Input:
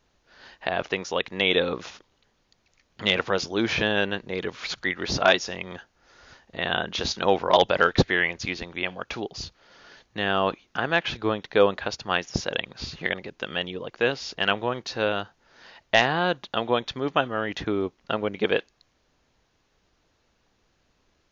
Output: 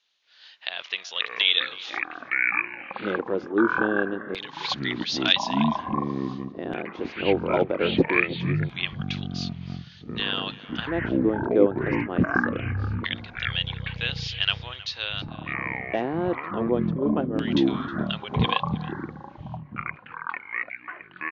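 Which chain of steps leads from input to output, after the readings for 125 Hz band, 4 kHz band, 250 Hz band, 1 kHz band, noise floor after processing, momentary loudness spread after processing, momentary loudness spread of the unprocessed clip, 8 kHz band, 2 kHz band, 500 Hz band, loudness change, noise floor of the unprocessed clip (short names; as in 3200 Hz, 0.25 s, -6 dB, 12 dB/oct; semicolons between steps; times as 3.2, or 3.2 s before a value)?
+5.5 dB, +1.0 dB, +5.5 dB, -2.5 dB, -49 dBFS, 13 LU, 12 LU, n/a, -1.0 dB, -2.0 dB, -0.5 dB, -69 dBFS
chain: LFO band-pass square 0.23 Hz 320–3500 Hz; echoes that change speed 0.22 s, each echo -7 st, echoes 3; outdoor echo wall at 54 m, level -17 dB; gain +6 dB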